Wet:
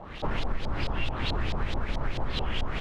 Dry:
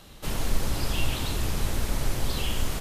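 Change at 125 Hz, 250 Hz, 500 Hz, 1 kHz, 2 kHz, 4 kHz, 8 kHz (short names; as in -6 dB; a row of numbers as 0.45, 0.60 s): -2.5, -2.0, -0.5, +2.0, +0.5, -3.0, -20.5 dB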